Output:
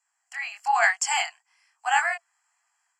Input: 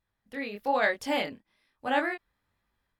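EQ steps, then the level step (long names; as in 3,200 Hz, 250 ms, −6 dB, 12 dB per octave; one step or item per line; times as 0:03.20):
Chebyshev high-pass filter 680 Hz, order 10
Butterworth band-reject 3,700 Hz, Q 3.1
low-pass with resonance 7,500 Hz, resonance Q 14
+7.0 dB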